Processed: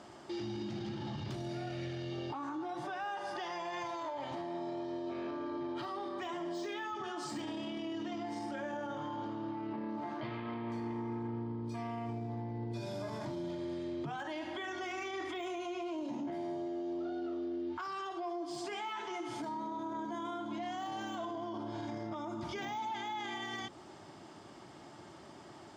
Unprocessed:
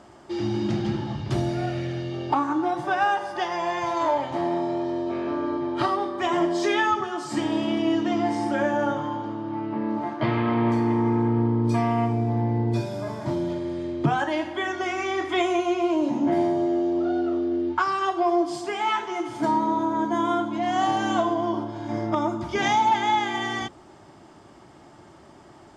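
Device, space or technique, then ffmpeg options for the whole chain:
broadcast voice chain: -af "highpass=91,deesser=1,acompressor=threshold=-31dB:ratio=4,equalizer=frequency=4100:width_type=o:width=1.5:gain=4.5,alimiter=level_in=5dB:limit=-24dB:level=0:latency=1:release=22,volume=-5dB,volume=-3.5dB"

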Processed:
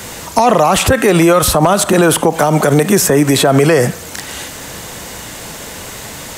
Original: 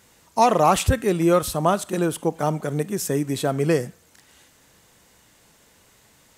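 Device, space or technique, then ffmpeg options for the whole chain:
mastering chain: -filter_complex "[0:a]equalizer=frequency=640:width_type=o:width=0.77:gain=2,acrossover=split=200|610|2000[link_01][link_02][link_03][link_04];[link_01]acompressor=threshold=-41dB:ratio=4[link_05];[link_02]acompressor=threshold=-33dB:ratio=4[link_06];[link_03]acompressor=threshold=-27dB:ratio=4[link_07];[link_04]acompressor=threshold=-40dB:ratio=4[link_08];[link_05][link_06][link_07][link_08]amix=inputs=4:normalize=0,acompressor=threshold=-28dB:ratio=2.5,asoftclip=type=hard:threshold=-20.5dB,alimiter=level_in=28.5dB:limit=-1dB:release=50:level=0:latency=1,volume=-1dB"

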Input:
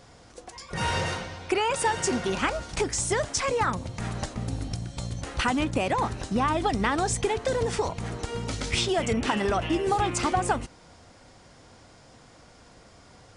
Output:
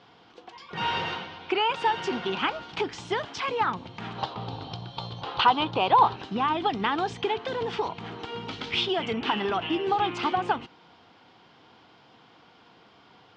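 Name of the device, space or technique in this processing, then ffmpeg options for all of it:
kitchen radio: -filter_complex "[0:a]highpass=200,equalizer=frequency=250:width_type=q:width=4:gain=-3,equalizer=frequency=570:width_type=q:width=4:gain=-10,equalizer=frequency=890:width_type=q:width=4:gain=3,equalizer=frequency=1900:width_type=q:width=4:gain=-4,equalizer=frequency=3100:width_type=q:width=4:gain=6,lowpass=frequency=4000:width=0.5412,lowpass=frequency=4000:width=1.3066,asettb=1/sr,asplit=3[link_01][link_02][link_03];[link_01]atrim=end=4.184[link_04];[link_02]atrim=start=4.18:end=6.16,asetpts=PTS-STARTPTS,afade=type=in:duration=0.004:curve=qsin,afade=type=out:start_time=1.976:duration=0.004:curve=qsin,equalizer=frequency=125:width_type=o:width=1:gain=6,equalizer=frequency=250:width_type=o:width=1:gain=-7,equalizer=frequency=500:width_type=o:width=1:gain=6,equalizer=frequency=1000:width_type=o:width=1:gain=9,equalizer=frequency=2000:width_type=o:width=1:gain=-6,equalizer=frequency=4000:width_type=o:width=1:gain=9,equalizer=frequency=8000:width_type=o:width=1:gain=-7[link_05];[link_03]atrim=start=6.156[link_06];[link_04][link_05]acrossfade=duration=0.004:curve1=hsin:curve2=qsin[link_07];[link_07][link_06]acrossfade=duration=0.004:curve1=qsin:curve2=hsin"

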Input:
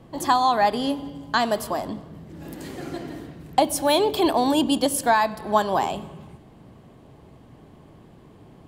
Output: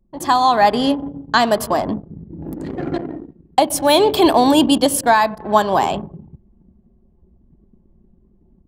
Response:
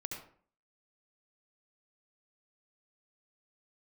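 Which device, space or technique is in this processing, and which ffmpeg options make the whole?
voice memo with heavy noise removal: -filter_complex "[0:a]asettb=1/sr,asplit=3[link_01][link_02][link_03];[link_01]atrim=end=3.004[link_04];[link_02]atrim=start=3:end=3.74,asetpts=PTS-STARTPTS,afade=type=in:duration=0.004:curve=qsin,afade=type=out:start_time=0.736:duration=0.004:curve=qsin,lowshelf=frequency=190:gain=-6[link_05];[link_03]atrim=start=3.736[link_06];[link_04][link_05]acrossfade=duration=0.004:curve1=hsin:curve2=qsin[link_07];[link_07][link_06]acrossfade=duration=0.004:curve1=qsin:curve2=hsin,anlmdn=6.31,dynaudnorm=framelen=200:gausssize=3:maxgain=10.5dB"

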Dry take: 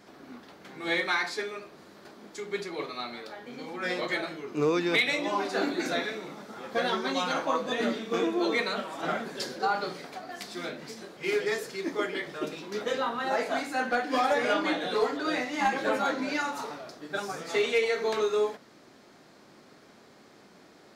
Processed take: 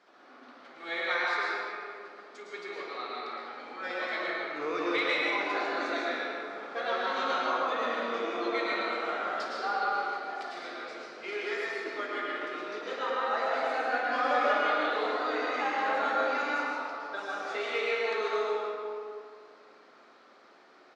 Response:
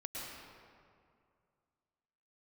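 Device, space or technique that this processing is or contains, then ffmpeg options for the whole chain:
station announcement: -filter_complex "[0:a]highpass=450,lowpass=4600,equalizer=frequency=1300:width_type=o:width=0.4:gain=5,aecho=1:1:55.39|151.6:0.251|0.282[link_01];[1:a]atrim=start_sample=2205[link_02];[link_01][link_02]afir=irnorm=-1:irlink=0,volume=-1.5dB"

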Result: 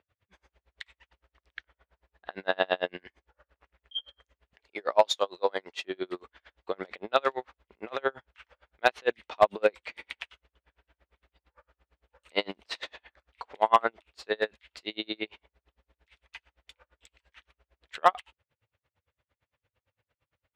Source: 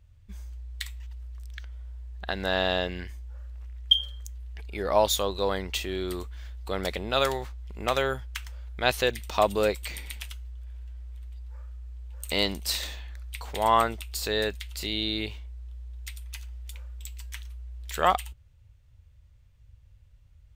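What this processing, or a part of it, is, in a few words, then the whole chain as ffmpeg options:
helicopter radio: -filter_complex "[0:a]asettb=1/sr,asplit=3[link_01][link_02][link_03];[link_01]atrim=end=4.534[link_04];[link_02]atrim=start=4.53:end=5.85,asetpts=PTS-STARTPTS,afade=type=in:duration=0.004:curve=qsin,afade=type=out:start_time=1.316:duration=0.004:curve=qsin,bass=frequency=250:gain=-8,treble=frequency=4000:gain=8[link_05];[link_03]atrim=start=5.846[link_06];[link_04][link_05]acrossfade=duration=0.004:curve1=hsin:curve2=qsin[link_07];[link_07][link_06]acrossfade=duration=0.004:curve1=qsin:curve2=hsin,highpass=360,lowpass=2500,aeval=exprs='val(0)*pow(10,-37*(0.5-0.5*cos(2*PI*8.8*n/s))/20)':channel_layout=same,asoftclip=type=hard:threshold=-14.5dB,volume=6.5dB"

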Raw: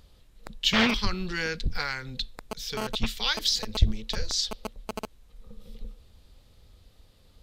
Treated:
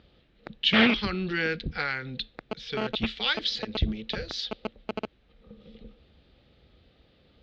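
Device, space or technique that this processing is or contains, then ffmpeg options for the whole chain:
guitar cabinet: -af "highpass=81,equalizer=frequency=97:width_type=q:width=4:gain=-9,equalizer=frequency=330:width_type=q:width=4:gain=3,equalizer=frequency=1000:width_type=q:width=4:gain=-9,lowpass=frequency=3600:width=0.5412,lowpass=frequency=3600:width=1.3066,volume=3dB"

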